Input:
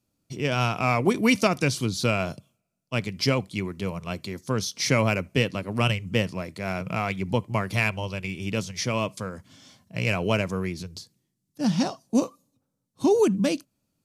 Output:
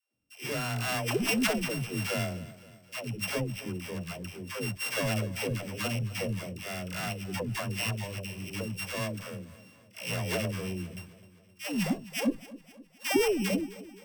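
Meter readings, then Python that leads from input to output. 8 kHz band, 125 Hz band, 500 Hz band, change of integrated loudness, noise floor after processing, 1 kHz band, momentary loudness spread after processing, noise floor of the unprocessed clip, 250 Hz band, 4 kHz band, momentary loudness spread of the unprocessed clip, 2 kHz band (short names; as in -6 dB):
-2.5 dB, -6.5 dB, -7.5 dB, -6.5 dB, -59 dBFS, -9.0 dB, 14 LU, -78 dBFS, -7.0 dB, -4.0 dB, 12 LU, -5.5 dB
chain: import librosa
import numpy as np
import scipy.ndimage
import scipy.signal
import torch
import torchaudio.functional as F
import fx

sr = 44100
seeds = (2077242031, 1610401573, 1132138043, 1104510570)

p1 = np.r_[np.sort(x[:len(x) // 16 * 16].reshape(-1, 16), axis=1).ravel(), x[len(x) // 16 * 16:]]
p2 = fx.cheby_harmonics(p1, sr, harmonics=(2,), levels_db=(-7,), full_scale_db=-7.0)
p3 = fx.dispersion(p2, sr, late='lows', ms=148.0, hz=410.0)
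p4 = p3 + fx.echo_feedback(p3, sr, ms=260, feedback_pct=53, wet_db=-18.0, dry=0)
y = p4 * 10.0 ** (-6.5 / 20.0)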